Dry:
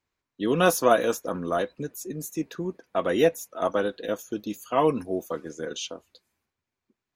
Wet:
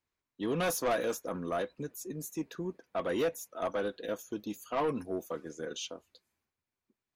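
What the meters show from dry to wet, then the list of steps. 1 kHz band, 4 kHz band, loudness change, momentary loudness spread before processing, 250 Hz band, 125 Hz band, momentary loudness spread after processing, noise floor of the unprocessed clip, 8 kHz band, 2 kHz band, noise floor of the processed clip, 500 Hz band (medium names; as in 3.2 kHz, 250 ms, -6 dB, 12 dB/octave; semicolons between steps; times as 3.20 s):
-9.5 dB, -7.0 dB, -8.5 dB, 13 LU, -8.0 dB, -7.5 dB, 10 LU, under -85 dBFS, -6.0 dB, -8.5 dB, under -85 dBFS, -9.0 dB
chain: saturation -19 dBFS, distortion -10 dB; trim -5.5 dB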